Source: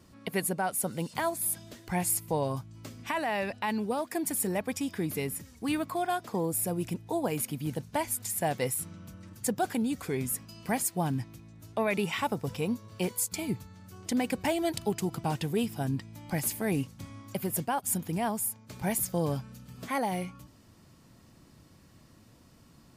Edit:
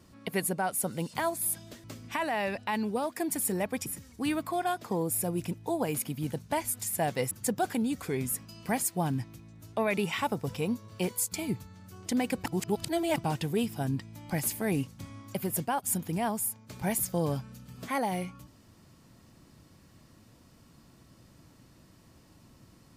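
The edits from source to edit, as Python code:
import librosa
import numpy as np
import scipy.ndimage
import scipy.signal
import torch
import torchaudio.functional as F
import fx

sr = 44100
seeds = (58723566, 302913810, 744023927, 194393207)

y = fx.edit(x, sr, fx.cut(start_s=1.84, length_s=0.95),
    fx.cut(start_s=4.81, length_s=0.48),
    fx.cut(start_s=8.74, length_s=0.57),
    fx.reverse_span(start_s=14.46, length_s=0.7), tone=tone)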